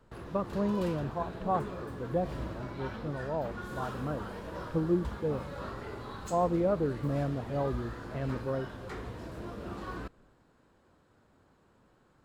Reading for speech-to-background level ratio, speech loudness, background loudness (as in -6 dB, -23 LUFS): 7.5 dB, -34.0 LUFS, -41.5 LUFS